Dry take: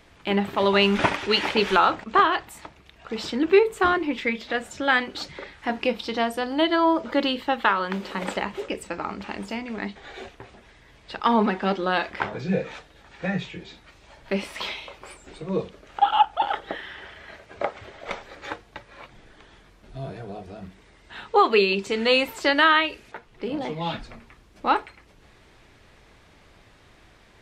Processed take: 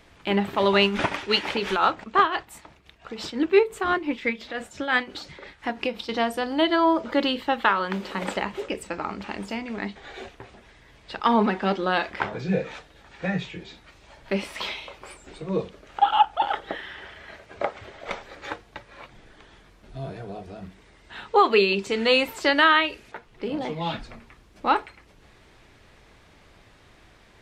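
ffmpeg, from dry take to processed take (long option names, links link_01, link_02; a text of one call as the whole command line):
ffmpeg -i in.wav -filter_complex "[0:a]asettb=1/sr,asplit=3[link_01][link_02][link_03];[link_01]atrim=end=0.834[link_04];[link_02]atrim=start=0.83:end=6.09,asetpts=PTS-STARTPTS,afade=type=in:duration=0.004:curve=qsin,afade=type=out:start_time=5.256:duration=0.004:curve=qsin,tremolo=f=5.8:d=0.59[link_05];[link_03]atrim=start=6.086[link_06];[link_04][link_05]acrossfade=duration=0.004:curve1=hsin:curve2=qsin[link_07];[link_07][link_06]acrossfade=duration=0.004:curve1=qsin:curve2=hsin" out.wav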